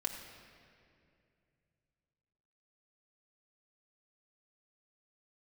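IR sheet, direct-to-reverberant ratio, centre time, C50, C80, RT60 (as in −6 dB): 0.5 dB, 48 ms, 5.5 dB, 6.0 dB, 2.4 s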